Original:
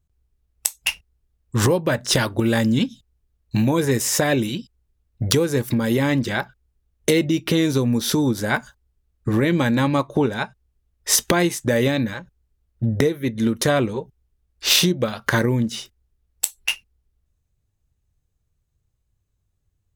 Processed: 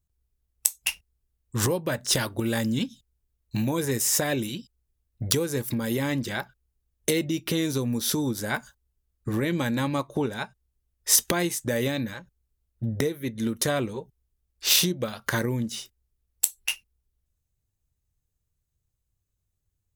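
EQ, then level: high shelf 6200 Hz +10 dB; -7.5 dB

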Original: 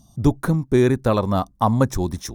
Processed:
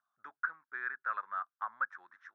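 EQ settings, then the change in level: Butterworth band-pass 1500 Hz, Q 3.6; 0.0 dB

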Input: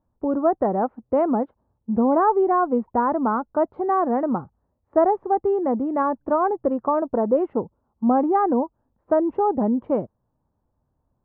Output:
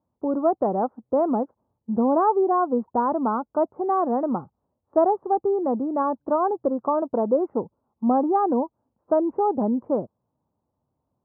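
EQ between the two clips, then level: HPF 87 Hz; LPF 1300 Hz 24 dB/oct; low shelf 120 Hz -4.5 dB; -1.0 dB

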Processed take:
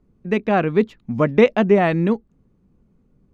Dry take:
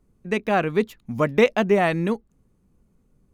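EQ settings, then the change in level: Bessel low-pass 3800 Hz, order 2; bell 220 Hz +4.5 dB 2.4 oct; +1.0 dB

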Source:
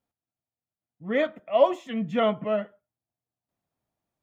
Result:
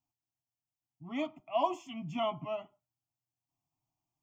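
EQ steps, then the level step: fixed phaser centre 310 Hz, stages 8; fixed phaser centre 2600 Hz, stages 8; 0.0 dB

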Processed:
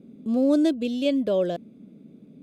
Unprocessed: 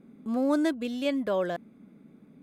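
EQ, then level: HPF 54 Hz; band shelf 1300 Hz -12.5 dB; high shelf 9000 Hz -11 dB; +5.5 dB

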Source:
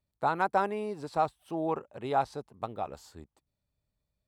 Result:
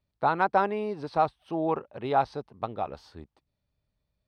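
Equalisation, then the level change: polynomial smoothing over 15 samples; +3.5 dB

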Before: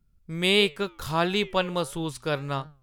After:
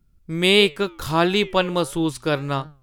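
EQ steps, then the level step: bell 320 Hz +6 dB 0.33 oct; +5.0 dB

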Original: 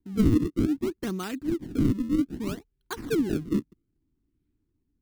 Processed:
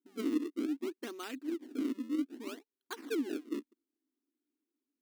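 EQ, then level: dynamic EQ 2700 Hz, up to +4 dB, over -50 dBFS, Q 1.1; brick-wall FIR high-pass 230 Hz; -8.5 dB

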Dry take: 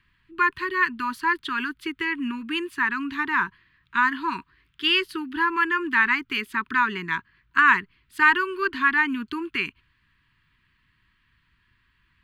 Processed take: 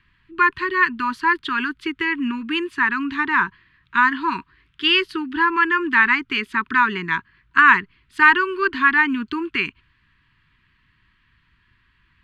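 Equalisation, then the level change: air absorption 64 m; +5.0 dB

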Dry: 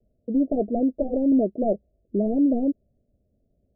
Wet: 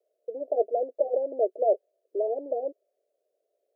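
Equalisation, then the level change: steep high-pass 420 Hz 48 dB/oct; +2.0 dB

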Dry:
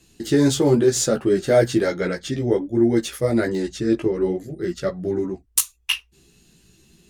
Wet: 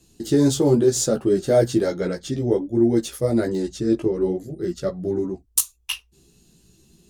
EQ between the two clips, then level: bell 2000 Hz -9 dB 1.4 oct; 0.0 dB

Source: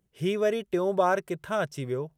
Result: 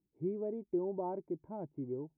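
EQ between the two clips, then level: vocal tract filter u; +1.0 dB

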